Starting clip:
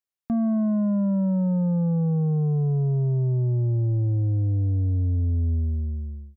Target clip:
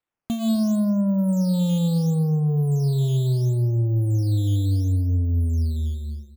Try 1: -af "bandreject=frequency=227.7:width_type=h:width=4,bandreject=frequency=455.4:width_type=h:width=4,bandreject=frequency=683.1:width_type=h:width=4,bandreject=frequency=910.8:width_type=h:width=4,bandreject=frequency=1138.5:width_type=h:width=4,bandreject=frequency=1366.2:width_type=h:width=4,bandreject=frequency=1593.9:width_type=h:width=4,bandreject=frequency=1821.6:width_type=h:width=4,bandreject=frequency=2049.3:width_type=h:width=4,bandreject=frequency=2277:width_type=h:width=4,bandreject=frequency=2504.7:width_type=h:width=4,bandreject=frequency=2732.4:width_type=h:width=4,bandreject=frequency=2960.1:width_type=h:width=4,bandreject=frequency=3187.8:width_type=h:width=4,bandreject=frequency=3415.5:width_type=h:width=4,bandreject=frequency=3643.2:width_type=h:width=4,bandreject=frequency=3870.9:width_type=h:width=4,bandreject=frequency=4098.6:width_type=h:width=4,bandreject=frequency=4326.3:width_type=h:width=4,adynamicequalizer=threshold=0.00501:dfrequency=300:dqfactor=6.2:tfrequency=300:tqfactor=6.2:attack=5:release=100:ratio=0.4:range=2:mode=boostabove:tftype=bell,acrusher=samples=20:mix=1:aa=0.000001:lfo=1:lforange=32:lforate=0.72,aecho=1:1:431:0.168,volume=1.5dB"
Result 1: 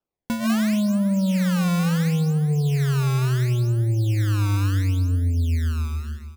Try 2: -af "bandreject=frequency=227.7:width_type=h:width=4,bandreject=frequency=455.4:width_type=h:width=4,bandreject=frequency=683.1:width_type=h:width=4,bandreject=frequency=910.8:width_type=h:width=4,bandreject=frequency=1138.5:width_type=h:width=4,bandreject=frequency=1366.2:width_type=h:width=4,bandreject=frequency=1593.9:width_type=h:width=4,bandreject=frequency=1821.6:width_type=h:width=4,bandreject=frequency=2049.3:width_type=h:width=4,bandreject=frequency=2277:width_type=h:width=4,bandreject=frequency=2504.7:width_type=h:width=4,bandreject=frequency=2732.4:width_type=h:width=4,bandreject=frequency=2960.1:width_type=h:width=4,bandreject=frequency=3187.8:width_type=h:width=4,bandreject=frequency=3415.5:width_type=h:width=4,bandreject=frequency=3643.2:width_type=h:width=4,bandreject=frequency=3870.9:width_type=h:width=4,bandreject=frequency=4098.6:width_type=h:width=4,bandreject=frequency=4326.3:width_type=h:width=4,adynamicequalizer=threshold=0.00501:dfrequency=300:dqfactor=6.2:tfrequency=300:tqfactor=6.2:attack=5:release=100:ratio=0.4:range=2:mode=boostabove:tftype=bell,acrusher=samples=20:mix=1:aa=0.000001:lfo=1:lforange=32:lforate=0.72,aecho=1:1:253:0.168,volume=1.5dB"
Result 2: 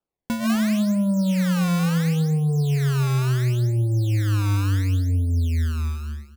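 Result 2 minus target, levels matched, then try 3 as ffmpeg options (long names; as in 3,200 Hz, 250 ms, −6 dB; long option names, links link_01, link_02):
sample-and-hold swept by an LFO: distortion +9 dB
-af "bandreject=frequency=227.7:width_type=h:width=4,bandreject=frequency=455.4:width_type=h:width=4,bandreject=frequency=683.1:width_type=h:width=4,bandreject=frequency=910.8:width_type=h:width=4,bandreject=frequency=1138.5:width_type=h:width=4,bandreject=frequency=1366.2:width_type=h:width=4,bandreject=frequency=1593.9:width_type=h:width=4,bandreject=frequency=1821.6:width_type=h:width=4,bandreject=frequency=2049.3:width_type=h:width=4,bandreject=frequency=2277:width_type=h:width=4,bandreject=frequency=2504.7:width_type=h:width=4,bandreject=frequency=2732.4:width_type=h:width=4,bandreject=frequency=2960.1:width_type=h:width=4,bandreject=frequency=3187.8:width_type=h:width=4,bandreject=frequency=3415.5:width_type=h:width=4,bandreject=frequency=3643.2:width_type=h:width=4,bandreject=frequency=3870.9:width_type=h:width=4,bandreject=frequency=4098.6:width_type=h:width=4,bandreject=frequency=4326.3:width_type=h:width=4,adynamicequalizer=threshold=0.00501:dfrequency=300:dqfactor=6.2:tfrequency=300:tqfactor=6.2:attack=5:release=100:ratio=0.4:range=2:mode=boostabove:tftype=bell,acrusher=samples=7:mix=1:aa=0.000001:lfo=1:lforange=11.2:lforate=0.72,aecho=1:1:253:0.168,volume=1.5dB"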